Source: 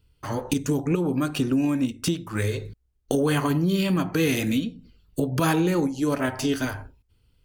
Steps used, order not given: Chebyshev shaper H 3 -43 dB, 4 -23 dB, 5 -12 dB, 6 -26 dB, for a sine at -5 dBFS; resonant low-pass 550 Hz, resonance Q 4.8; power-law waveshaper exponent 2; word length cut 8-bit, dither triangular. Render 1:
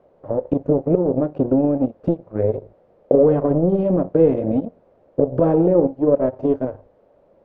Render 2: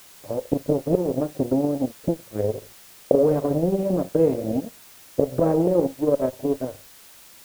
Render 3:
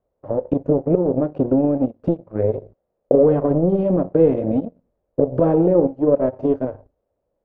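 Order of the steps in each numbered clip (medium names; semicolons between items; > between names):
Chebyshev shaper > power-law waveshaper > word length cut > resonant low-pass; power-law waveshaper > Chebyshev shaper > resonant low-pass > word length cut; word length cut > Chebyshev shaper > power-law waveshaper > resonant low-pass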